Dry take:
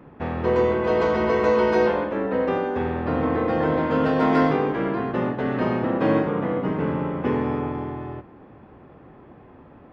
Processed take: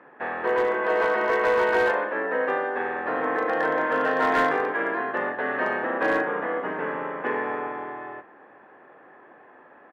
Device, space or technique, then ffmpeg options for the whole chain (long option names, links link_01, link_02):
megaphone: -filter_complex "[0:a]highpass=540,lowpass=2500,equalizer=frequency=1700:width_type=o:width=0.22:gain=12,asoftclip=type=hard:threshold=-17dB,asplit=2[link_01][link_02];[link_02]adelay=39,volume=-14dB[link_03];[link_01][link_03]amix=inputs=2:normalize=0,volume=1.5dB"